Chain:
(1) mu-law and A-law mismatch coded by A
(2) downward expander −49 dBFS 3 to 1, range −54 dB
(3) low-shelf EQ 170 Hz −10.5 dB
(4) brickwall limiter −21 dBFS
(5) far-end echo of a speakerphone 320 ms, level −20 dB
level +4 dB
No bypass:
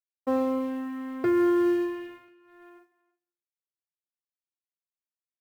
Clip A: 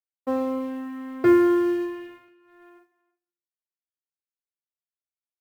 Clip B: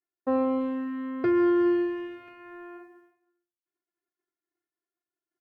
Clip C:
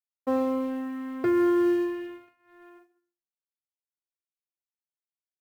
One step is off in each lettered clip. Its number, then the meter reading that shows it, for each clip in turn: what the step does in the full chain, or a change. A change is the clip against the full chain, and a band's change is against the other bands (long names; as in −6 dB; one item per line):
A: 4, change in crest factor +5.5 dB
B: 1, distortion level −25 dB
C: 5, echo-to-direct ratio −24.5 dB to none audible